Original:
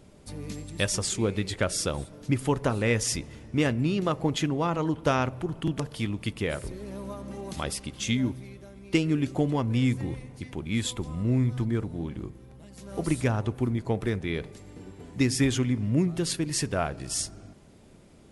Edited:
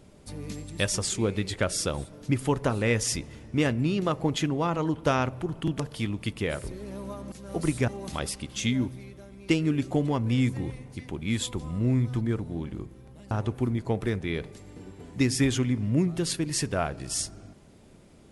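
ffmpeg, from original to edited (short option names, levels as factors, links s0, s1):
-filter_complex "[0:a]asplit=4[s0][s1][s2][s3];[s0]atrim=end=7.322[s4];[s1]atrim=start=12.748:end=13.312[s5];[s2]atrim=start=7.318:end=12.752[s6];[s3]atrim=start=13.308[s7];[s4][s5]acrossfade=d=0.004:c1=hsin:c2=hsin[s8];[s8][s6]acrossfade=d=0.004:c1=hsin:c2=hsin[s9];[s9][s7]acrossfade=d=0.004:c1=hsin:c2=hsin"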